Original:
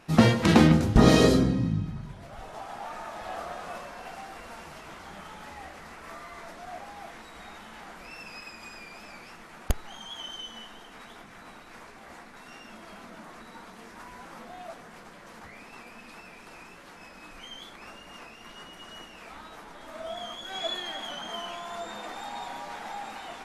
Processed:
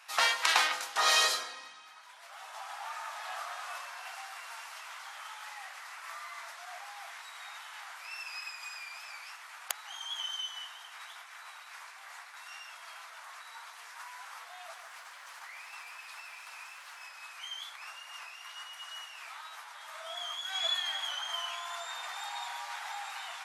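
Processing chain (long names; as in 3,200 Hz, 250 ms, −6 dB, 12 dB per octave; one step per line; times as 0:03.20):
high-pass filter 890 Hz 24 dB per octave
high-shelf EQ 2,400 Hz +4 dB
0:14.62–0:17.03: feedback echo at a low word length 149 ms, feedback 35%, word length 11 bits, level −9 dB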